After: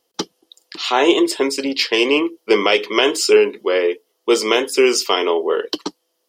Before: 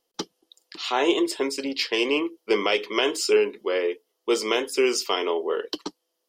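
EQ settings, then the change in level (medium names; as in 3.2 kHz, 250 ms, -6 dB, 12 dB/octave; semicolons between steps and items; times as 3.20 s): high-pass 43 Hz; +7.5 dB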